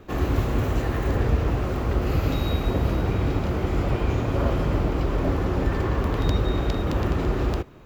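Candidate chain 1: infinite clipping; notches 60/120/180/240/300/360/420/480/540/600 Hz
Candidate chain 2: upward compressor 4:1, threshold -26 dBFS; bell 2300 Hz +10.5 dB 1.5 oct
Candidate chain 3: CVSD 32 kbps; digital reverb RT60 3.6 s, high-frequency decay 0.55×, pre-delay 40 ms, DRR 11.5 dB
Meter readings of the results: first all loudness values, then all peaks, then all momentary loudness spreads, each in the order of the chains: -24.5, -23.5, -25.0 LUFS; -16.5, -6.5, -10.0 dBFS; 1, 2, 2 LU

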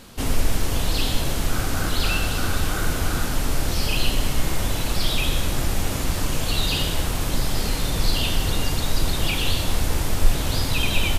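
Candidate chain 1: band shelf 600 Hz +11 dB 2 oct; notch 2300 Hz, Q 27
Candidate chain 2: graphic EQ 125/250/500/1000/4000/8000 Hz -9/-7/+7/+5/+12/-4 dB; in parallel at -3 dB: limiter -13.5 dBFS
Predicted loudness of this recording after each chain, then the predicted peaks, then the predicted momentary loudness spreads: -21.5, -16.0 LUFS; -2.0, -1.0 dBFS; 2, 5 LU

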